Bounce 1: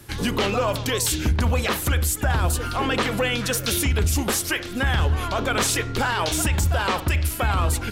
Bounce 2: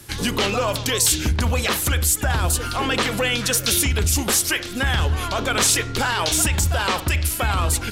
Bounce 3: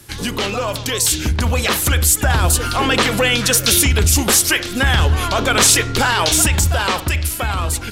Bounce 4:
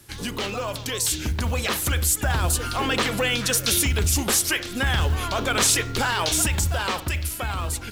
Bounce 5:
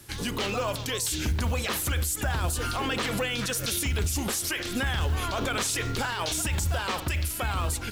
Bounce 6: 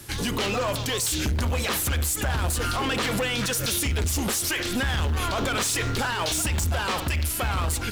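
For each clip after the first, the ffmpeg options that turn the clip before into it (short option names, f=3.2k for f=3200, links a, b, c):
-af "equalizer=f=7.5k:w=0.35:g=6.5"
-af "dynaudnorm=f=440:g=7:m=11.5dB"
-af "acrusher=bits=7:mode=log:mix=0:aa=0.000001,volume=-7.5dB"
-af "alimiter=limit=-21dB:level=0:latency=1:release=45,volume=1dB"
-af "asoftclip=type=tanh:threshold=-27.5dB,volume=6.5dB"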